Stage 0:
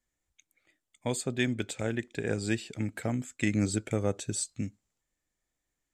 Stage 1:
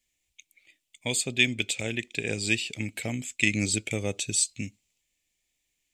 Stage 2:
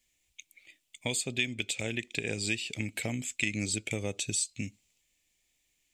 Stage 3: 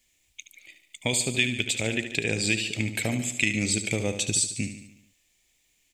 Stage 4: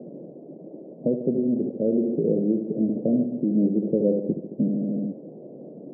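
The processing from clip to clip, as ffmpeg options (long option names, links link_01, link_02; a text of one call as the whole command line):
ffmpeg -i in.wav -af "highshelf=frequency=1900:width_type=q:width=3:gain=9,volume=-1dB" out.wav
ffmpeg -i in.wav -af "acompressor=threshold=-35dB:ratio=2.5,volume=3dB" out.wav
ffmpeg -i in.wav -af "aecho=1:1:73|146|219|292|365|438:0.316|0.177|0.0992|0.0555|0.0311|0.0174,volume=6dB" out.wav
ffmpeg -i in.wav -filter_complex "[0:a]aeval=exprs='val(0)+0.5*0.0841*sgn(val(0))':channel_layout=same,asplit=2[link_01][link_02];[link_02]acrusher=bits=4:dc=4:mix=0:aa=0.000001,volume=-6dB[link_03];[link_01][link_03]amix=inputs=2:normalize=0,asuperpass=centerf=300:order=12:qfactor=0.68,volume=2dB" out.wav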